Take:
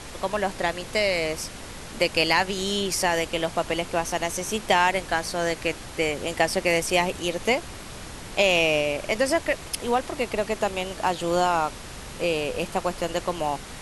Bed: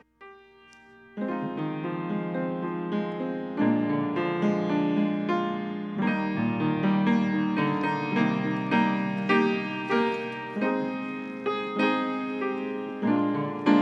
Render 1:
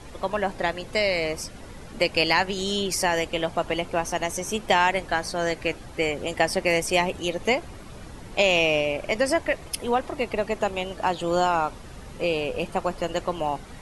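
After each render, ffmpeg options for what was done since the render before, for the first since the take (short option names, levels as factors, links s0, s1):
-af "afftdn=nr=10:nf=-39"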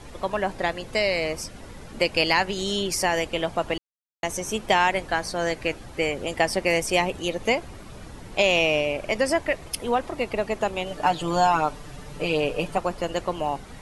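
-filter_complex "[0:a]asettb=1/sr,asplit=3[s0][s1][s2];[s0]atrim=end=10.864[s3];[s1]atrim=start=10.86:end=12.78,asetpts=PTS-STARTPTS,afade=t=in:d=0.004:c=qsin,afade=t=out:st=1.916:d=0.004:c=qsin,aecho=1:1:6.8:0.74,atrim=end_sample=84672[s4];[s2]atrim=start=12.776[s5];[s3][s4]acrossfade=d=0.004:c1=hsin:c2=qsin[s6];[s6][s5]acrossfade=d=0.004:c1=qsin:c2=hsin,asplit=3[s7][s8][s9];[s7]atrim=end=3.78,asetpts=PTS-STARTPTS,afade=t=out:st=3.776:d=0.004:c=hsin[s10];[s8]atrim=start=3.78:end=4.23,asetpts=PTS-STARTPTS,volume=0[s11];[s9]atrim=start=4.23,asetpts=PTS-STARTPTS,afade=t=in:d=0.004:c=hsin[s12];[s10][s11][s12]concat=n=3:v=0:a=1"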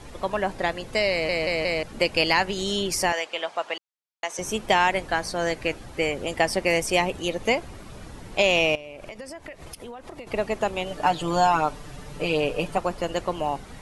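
-filter_complex "[0:a]asettb=1/sr,asplit=3[s0][s1][s2];[s0]atrim=end=3.124[s3];[s1]atrim=start=3.12:end=4.39,asetpts=PTS-STARTPTS,afade=t=in:d=0.004:c=qsin,afade=t=out:st=1.266:d=0.004:c=qsin,highpass=650,lowpass=6800[s4];[s2]atrim=start=4.386[s5];[s3][s4]acrossfade=d=0.004:c1=hsin:c2=qsin[s6];[s6][s5]acrossfade=d=0.004:c1=qsin:c2=hsin,asettb=1/sr,asplit=3[s7][s8][s9];[s7]atrim=end=8.754[s10];[s8]atrim=start=8.75:end=10.27,asetpts=PTS-STARTPTS,afade=t=in:d=0.004:c=qsin,afade=t=out:st=1.516:d=0.004:c=qsin,acompressor=threshold=0.0178:ratio=10:attack=3.2:release=140:knee=1:detection=peak[s11];[s9]atrim=start=10.266[s12];[s10][s11]acrossfade=d=0.004:c1=hsin:c2=qsin[s13];[s13][s12]acrossfade=d=0.004:c1=qsin:c2=hsin,asplit=5[s14][s15][s16][s17][s18];[s14]atrim=end=1.292[s19];[s15]atrim=start=1.108:end=1.292[s20];[s16]atrim=start=1.108:end=1.292[s21];[s17]atrim=start=1.108:end=1.292[s22];[s18]atrim=start=1.828[s23];[s19][s20]acrossfade=d=0.004:c1=hsin:c2=hsin[s24];[s24][s21]acrossfade=d=0.004:c1=hsin:c2=hsin[s25];[s25][s22]acrossfade=d=0.004:c1=hsin:c2=hsin[s26];[s26][s23]acrossfade=d=0.004:c1=hsin:c2=hsin"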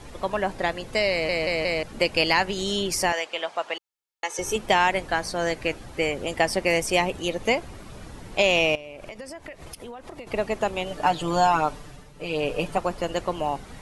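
-filter_complex "[0:a]asettb=1/sr,asplit=3[s0][s1][s2];[s0]atrim=end=3.764[s3];[s1]atrim=start=3.76:end=4.56,asetpts=PTS-STARTPTS,afade=t=in:d=0.004:c=qsin,afade=t=out:st=0.796:d=0.004:c=qsin,aecho=1:1:2.3:0.65,atrim=end_sample=35280[s4];[s2]atrim=start=4.556[s5];[s3][s4]acrossfade=d=0.004:c1=hsin:c2=qsin[s6];[s6][s5]acrossfade=d=0.004:c1=qsin:c2=hsin,asplit=3[s7][s8][s9];[s7]atrim=end=12.12,asetpts=PTS-STARTPTS,afade=t=out:st=11.74:d=0.38:silence=0.281838[s10];[s8]atrim=start=12.12:end=12.15,asetpts=PTS-STARTPTS,volume=0.282[s11];[s9]atrim=start=12.15,asetpts=PTS-STARTPTS,afade=t=in:d=0.38:silence=0.281838[s12];[s10][s11][s12]concat=n=3:v=0:a=1"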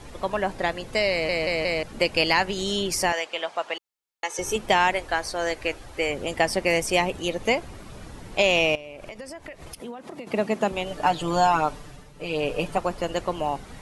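-filter_complex "[0:a]asettb=1/sr,asplit=3[s0][s1][s2];[s0]atrim=end=4.934[s3];[s1]atrim=start=4.93:end=6.1,asetpts=PTS-STARTPTS,afade=t=in:d=0.004:c=qsin,afade=t=out:st=1.166:d=0.004:c=qsin,equalizer=f=180:w=1.5:g=-11.5[s4];[s2]atrim=start=6.096[s5];[s3][s4]acrossfade=d=0.004:c1=hsin:c2=qsin[s6];[s6][s5]acrossfade=d=0.004:c1=qsin:c2=hsin,asettb=1/sr,asplit=3[s7][s8][s9];[s7]atrim=end=9.804[s10];[s8]atrim=start=9.8:end=10.72,asetpts=PTS-STARTPTS,afade=t=in:d=0.004:c=qsin,afade=t=out:st=0.916:d=0.004:c=qsin,highpass=f=190:t=q:w=2.1[s11];[s9]atrim=start=10.716[s12];[s10][s11]acrossfade=d=0.004:c1=hsin:c2=qsin[s13];[s13][s12]acrossfade=d=0.004:c1=qsin:c2=hsin"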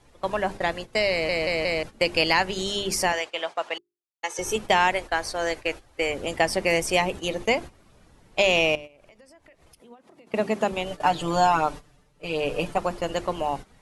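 -af "bandreject=f=50:t=h:w=6,bandreject=f=100:t=h:w=6,bandreject=f=150:t=h:w=6,bandreject=f=200:t=h:w=6,bandreject=f=250:t=h:w=6,bandreject=f=300:t=h:w=6,bandreject=f=350:t=h:w=6,bandreject=f=400:t=h:w=6,agate=range=0.2:threshold=0.0224:ratio=16:detection=peak"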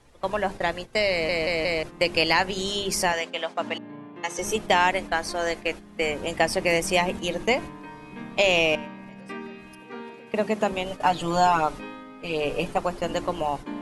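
-filter_complex "[1:a]volume=0.188[s0];[0:a][s0]amix=inputs=2:normalize=0"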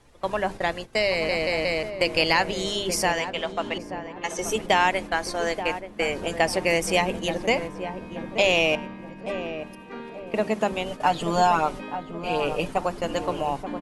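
-filter_complex "[0:a]asplit=2[s0][s1];[s1]adelay=880,lowpass=f=880:p=1,volume=0.398,asplit=2[s2][s3];[s3]adelay=880,lowpass=f=880:p=1,volume=0.47,asplit=2[s4][s5];[s5]adelay=880,lowpass=f=880:p=1,volume=0.47,asplit=2[s6][s7];[s7]adelay=880,lowpass=f=880:p=1,volume=0.47,asplit=2[s8][s9];[s9]adelay=880,lowpass=f=880:p=1,volume=0.47[s10];[s0][s2][s4][s6][s8][s10]amix=inputs=6:normalize=0"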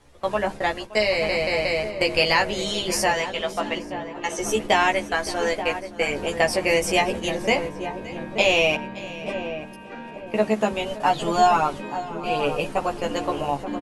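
-filter_complex "[0:a]asplit=2[s0][s1];[s1]adelay=14,volume=0.708[s2];[s0][s2]amix=inputs=2:normalize=0,aecho=1:1:570:0.133"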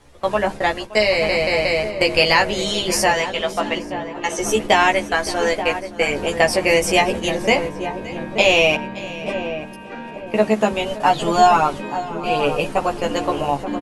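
-af "volume=1.68,alimiter=limit=0.891:level=0:latency=1"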